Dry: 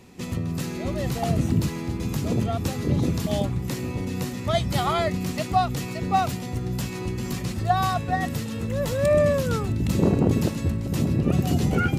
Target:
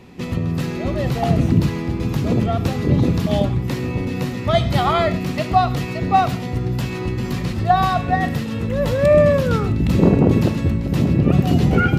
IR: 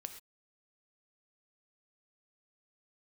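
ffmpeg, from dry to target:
-filter_complex "[0:a]asplit=2[link_01][link_02];[link_02]lowpass=5300[link_03];[1:a]atrim=start_sample=2205,highshelf=frequency=8900:gain=-4.5[link_04];[link_03][link_04]afir=irnorm=-1:irlink=0,volume=8dB[link_05];[link_01][link_05]amix=inputs=2:normalize=0,volume=-2dB"

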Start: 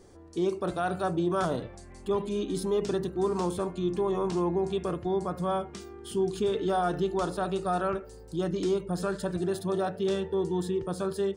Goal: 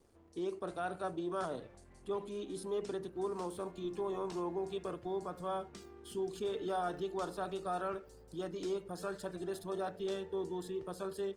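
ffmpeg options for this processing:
ffmpeg -i in.wav -filter_complex "[0:a]acrossover=split=280|2900[link_01][link_02][link_03];[link_01]acompressor=threshold=-42dB:ratio=6[link_04];[link_04][link_02][link_03]amix=inputs=3:normalize=0,aeval=exprs='sgn(val(0))*max(abs(val(0))-0.001,0)':channel_layout=same,volume=-8dB" -ar 48000 -c:a libopus -b:a 24k out.opus

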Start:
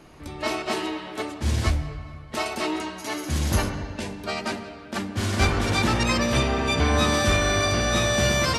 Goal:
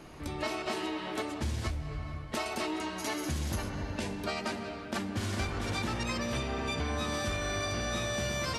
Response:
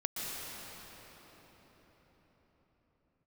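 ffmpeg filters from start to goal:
-filter_complex "[0:a]acompressor=threshold=-31dB:ratio=6,asplit=2[link_01][link_02];[1:a]atrim=start_sample=2205,adelay=128[link_03];[link_02][link_03]afir=irnorm=-1:irlink=0,volume=-26.5dB[link_04];[link_01][link_04]amix=inputs=2:normalize=0"

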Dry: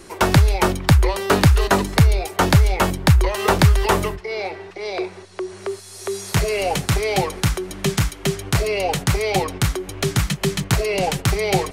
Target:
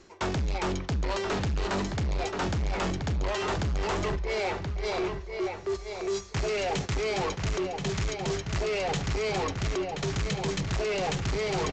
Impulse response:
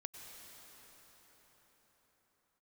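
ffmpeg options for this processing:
-filter_complex "[0:a]acontrast=84,agate=range=-15dB:threshold=-20dB:ratio=16:detection=peak,areverse,acompressor=threshold=-20dB:ratio=6,areverse,asplit=2[link_01][link_02];[link_02]adelay=1028,lowpass=frequency=4600:poles=1,volume=-9dB,asplit=2[link_03][link_04];[link_04]adelay=1028,lowpass=frequency=4600:poles=1,volume=0.27,asplit=2[link_05][link_06];[link_06]adelay=1028,lowpass=frequency=4600:poles=1,volume=0.27[link_07];[link_01][link_03][link_05][link_07]amix=inputs=4:normalize=0,aresample=16000,asoftclip=type=tanh:threshold=-24dB,aresample=44100,bandreject=frequency=168.7:width_type=h:width=4,bandreject=frequency=337.4:width_type=h:width=4,bandreject=frequency=506.1:width_type=h:width=4,bandreject=frequency=674.8:width_type=h:width=4,bandreject=frequency=843.5:width_type=h:width=4,bandreject=frequency=1012.2:width_type=h:width=4,bandreject=frequency=1180.9:width_type=h:width=4,bandreject=frequency=1349.6:width_type=h:width=4,bandreject=frequency=1518.3:width_type=h:width=4,bandreject=frequency=1687:width_type=h:width=4,bandreject=frequency=1855.7:width_type=h:width=4,bandreject=frequency=2024.4:width_type=h:width=4,bandreject=frequency=2193.1:width_type=h:width=4,bandreject=frequency=2361.8:width_type=h:width=4,bandreject=frequency=2530.5:width_type=h:width=4,bandreject=frequency=2699.2:width_type=h:width=4,bandreject=frequency=2867.9:width_type=h:width=4,bandreject=frequency=3036.6:width_type=h:width=4,bandreject=frequency=3205.3:width_type=h:width=4,bandreject=frequency=3374:width_type=h:width=4,bandreject=frequency=3542.7:width_type=h:width=4,bandreject=frequency=3711.4:width_type=h:width=4,bandreject=frequency=3880.1:width_type=h:width=4,bandreject=frequency=4048.8:width_type=h:width=4,bandreject=frequency=4217.5:width_type=h:width=4,bandreject=frequency=4386.2:width_type=h:width=4,bandreject=frequency=4554.9:width_type=h:width=4,bandreject=frequency=4723.6:width_type=h:width=4,bandreject=frequency=4892.3:width_type=h:width=4,bandreject=frequency=5061:width_type=h:width=4,bandreject=frequency=5229.7:width_type=h:width=4,bandreject=frequency=5398.4:width_type=h:width=4,bandreject=frequency=5567.1:width_type=h:width=4,bandreject=frequency=5735.8:width_type=h:width=4,bandreject=frequency=5904.5:width_type=h:width=4,bandreject=frequency=6073.2:width_type=h:width=4,bandreject=frequency=6241.9:width_type=h:width=4,bandreject=frequency=6410.6:width_type=h:width=4,volume=-1.5dB"

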